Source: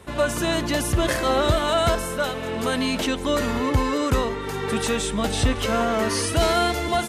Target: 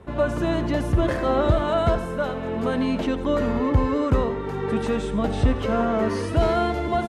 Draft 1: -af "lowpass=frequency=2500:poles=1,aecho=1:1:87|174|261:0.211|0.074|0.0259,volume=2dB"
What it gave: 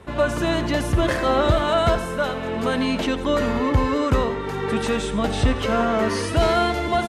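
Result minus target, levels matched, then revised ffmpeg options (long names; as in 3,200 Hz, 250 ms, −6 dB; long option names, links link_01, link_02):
2,000 Hz band +4.0 dB
-af "lowpass=frequency=800:poles=1,aecho=1:1:87|174|261:0.211|0.074|0.0259,volume=2dB"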